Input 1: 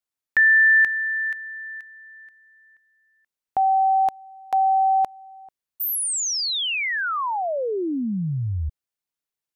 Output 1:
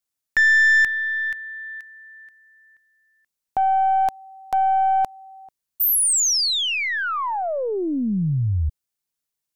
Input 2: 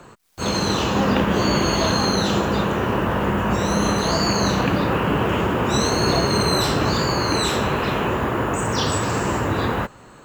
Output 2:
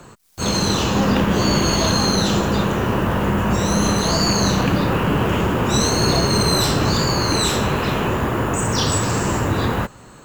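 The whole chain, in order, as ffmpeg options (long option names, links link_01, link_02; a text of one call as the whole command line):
ffmpeg -i in.wav -af "aeval=exprs='0.596*(cos(1*acos(clip(val(0)/0.596,-1,1)))-cos(1*PI/2))+0.0299*(cos(5*acos(clip(val(0)/0.596,-1,1)))-cos(5*PI/2))+0.0133*(cos(8*acos(clip(val(0)/0.596,-1,1)))-cos(8*PI/2))':channel_layout=same,bass=frequency=250:gain=4,treble=frequency=4000:gain=6,volume=-1.5dB" out.wav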